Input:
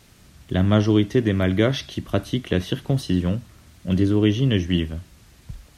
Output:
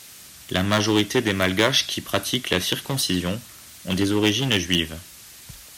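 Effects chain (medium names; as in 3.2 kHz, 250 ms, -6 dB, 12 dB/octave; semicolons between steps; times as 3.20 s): one-sided clip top -15 dBFS; tilt EQ +3.5 dB/octave; trim +4.5 dB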